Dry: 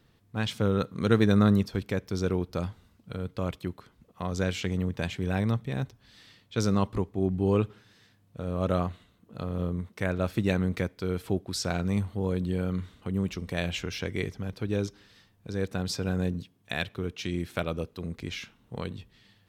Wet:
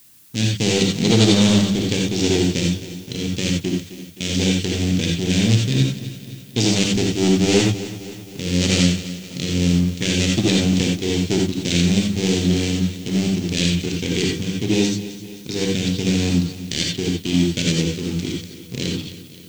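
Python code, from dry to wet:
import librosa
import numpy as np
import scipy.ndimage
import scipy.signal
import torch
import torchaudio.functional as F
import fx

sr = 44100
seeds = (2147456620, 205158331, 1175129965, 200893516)

p1 = fx.dead_time(x, sr, dead_ms=0.27)
p2 = scipy.signal.sosfilt(scipy.signal.cheby1(2, 1.0, [330.0, 2700.0], 'bandstop', fs=sr, output='sos'), p1)
p3 = fx.leveller(p2, sr, passes=2)
p4 = scipy.signal.sosfilt(scipy.signal.butter(6, 7500.0, 'lowpass', fs=sr, output='sos'), p3)
p5 = fx.high_shelf(p4, sr, hz=3400.0, db=11.0)
p6 = fx.hum_notches(p5, sr, base_hz=50, count=4)
p7 = p6 + fx.echo_feedback(p6, sr, ms=261, feedback_pct=56, wet_db=-14.5, dry=0)
p8 = fx.rev_gated(p7, sr, seeds[0], gate_ms=110, shape='rising', drr_db=0.0)
p9 = fx.dmg_noise_colour(p8, sr, seeds[1], colour='blue', level_db=-55.0)
p10 = fx.low_shelf(p9, sr, hz=95.0, db=-9.5)
y = F.gain(torch.from_numpy(p10), 5.0).numpy()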